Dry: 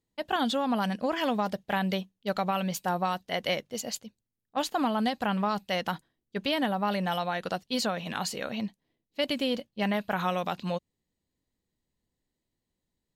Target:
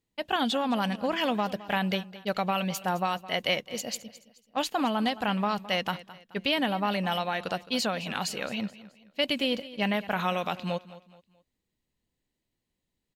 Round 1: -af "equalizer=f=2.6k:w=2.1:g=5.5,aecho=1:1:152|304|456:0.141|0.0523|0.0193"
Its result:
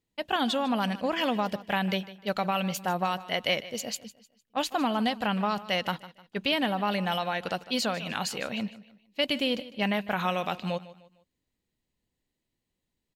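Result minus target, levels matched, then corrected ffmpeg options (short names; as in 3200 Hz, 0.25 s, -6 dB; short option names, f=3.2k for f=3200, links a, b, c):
echo 62 ms early
-af "equalizer=f=2.6k:w=2.1:g=5.5,aecho=1:1:214|428|642:0.141|0.0523|0.0193"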